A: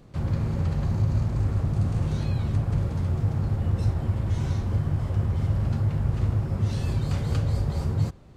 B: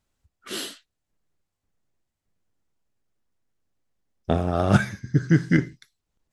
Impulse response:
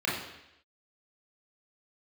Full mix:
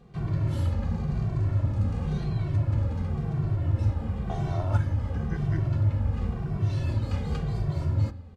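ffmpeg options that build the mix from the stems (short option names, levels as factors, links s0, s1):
-filter_complex "[0:a]highshelf=f=5600:g=-10.5,volume=1.12,asplit=2[s0][s1];[s1]volume=0.0794[s2];[1:a]equalizer=f=900:t=o:w=0.72:g=14.5,volume=0.168[s3];[2:a]atrim=start_sample=2205[s4];[s2][s4]afir=irnorm=-1:irlink=0[s5];[s0][s3][s5]amix=inputs=3:normalize=0,asplit=2[s6][s7];[s7]adelay=2.1,afreqshift=-0.95[s8];[s6][s8]amix=inputs=2:normalize=1"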